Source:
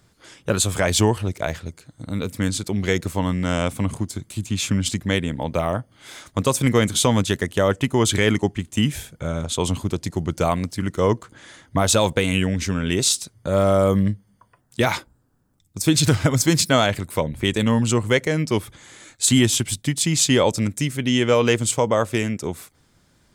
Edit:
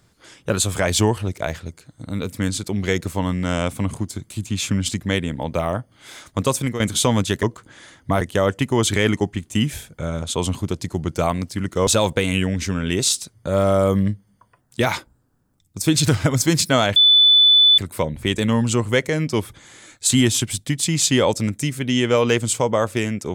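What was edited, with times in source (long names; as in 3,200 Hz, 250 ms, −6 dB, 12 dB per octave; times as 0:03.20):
0:06.52–0:06.80: fade out, to −13 dB
0:11.09–0:11.87: move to 0:07.43
0:16.96: insert tone 3,490 Hz −9 dBFS 0.82 s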